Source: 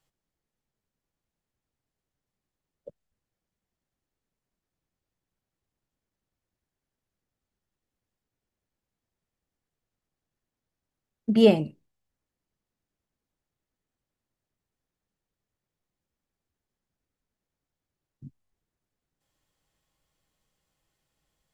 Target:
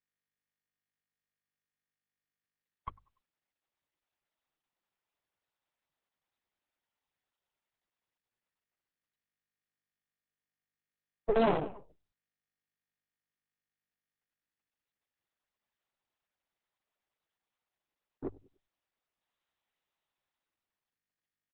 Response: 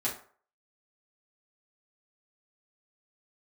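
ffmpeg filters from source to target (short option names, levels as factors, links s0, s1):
-filter_complex "[0:a]aresample=16000,aeval=exprs='abs(val(0))':c=same,aresample=44100,dynaudnorm=f=500:g=11:m=6.31,acrossover=split=550[s0][s1];[s0]aeval=exprs='sgn(val(0))*max(abs(val(0))-0.0211,0)':c=same[s2];[s2][s1]amix=inputs=2:normalize=0,acrossover=split=2900[s3][s4];[s4]acompressor=threshold=0.01:ratio=4:attack=1:release=60[s5];[s3][s5]amix=inputs=2:normalize=0,lowshelf=f=140:g=-10.5,aecho=1:1:97|194|291:0.0794|0.0373|0.0175,afftdn=nr=16:nf=-56,bandreject=f=50:t=h:w=6,bandreject=f=100:t=h:w=6,alimiter=limit=0.237:level=0:latency=1:release=130,highshelf=f=2000:g=-10" -ar 48000 -c:a libopus -b:a 6k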